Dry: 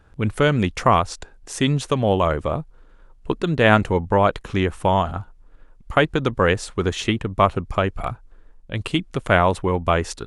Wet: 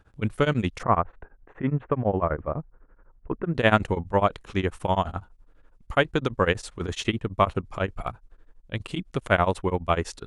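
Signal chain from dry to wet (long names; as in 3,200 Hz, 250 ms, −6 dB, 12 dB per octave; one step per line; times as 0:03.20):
0:00.83–0:03.55: inverse Chebyshev low-pass filter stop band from 4,700 Hz, stop band 50 dB
tremolo along a rectified sine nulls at 12 Hz
level −2.5 dB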